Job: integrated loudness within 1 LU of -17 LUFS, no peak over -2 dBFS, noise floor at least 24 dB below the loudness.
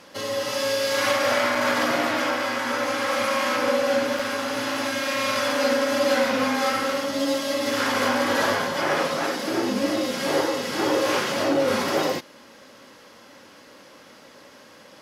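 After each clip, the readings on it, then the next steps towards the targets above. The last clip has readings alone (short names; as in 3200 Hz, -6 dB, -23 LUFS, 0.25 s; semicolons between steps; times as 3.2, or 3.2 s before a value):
dropouts 2; longest dropout 4.0 ms; loudness -23.0 LUFS; peak -9.5 dBFS; loudness target -17.0 LUFS
-> interpolate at 1.55/4.19, 4 ms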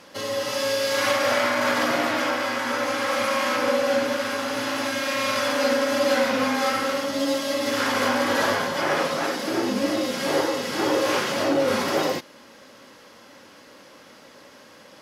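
dropouts 0; loudness -23.0 LUFS; peak -9.5 dBFS; loudness target -17.0 LUFS
-> gain +6 dB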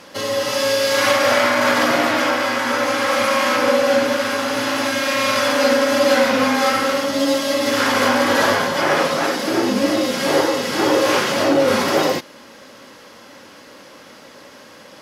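loudness -17.0 LUFS; peak -3.5 dBFS; noise floor -43 dBFS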